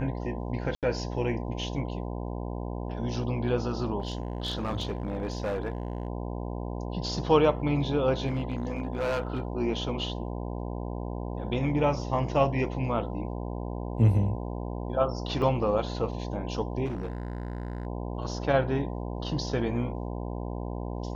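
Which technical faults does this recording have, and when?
buzz 60 Hz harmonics 17 -34 dBFS
0.75–0.83 gap 77 ms
4–6.08 clipped -26 dBFS
8.26–9.4 clipped -24.5 dBFS
15.42 gap 3 ms
16.85–17.87 clipped -29 dBFS

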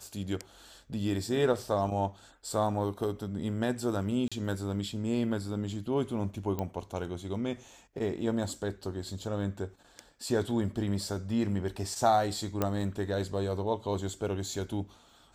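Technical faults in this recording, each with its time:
4.28–4.32 gap 36 ms
6.59 pop -20 dBFS
12.62 pop -14 dBFS

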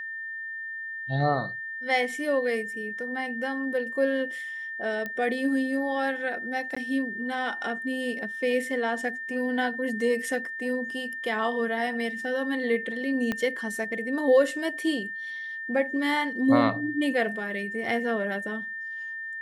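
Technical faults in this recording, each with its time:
tone 1800 Hz -33 dBFS
5.06 pop -20 dBFS
6.75–6.76 gap 15 ms
13.32 pop -15 dBFS

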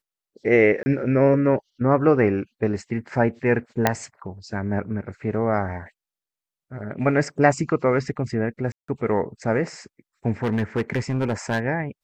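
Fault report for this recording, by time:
0.83–0.86 gap 30 ms
3.87 pop -3 dBFS
8.72–8.88 gap 0.164 s
10.43–11.6 clipped -18 dBFS

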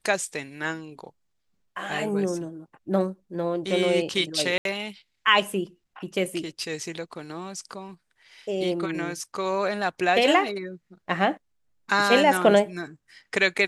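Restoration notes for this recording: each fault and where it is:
4.58–4.65 gap 72 ms

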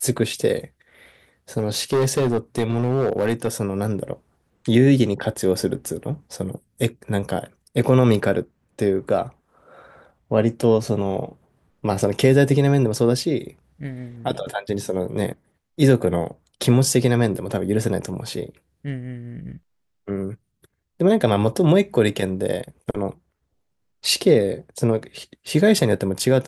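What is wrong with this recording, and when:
1.57–3.48 clipped -15 dBFS

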